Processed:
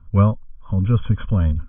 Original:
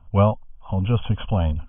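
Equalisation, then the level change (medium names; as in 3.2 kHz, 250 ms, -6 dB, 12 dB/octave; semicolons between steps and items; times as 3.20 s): distance through air 62 m; static phaser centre 2.8 kHz, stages 6; +4.0 dB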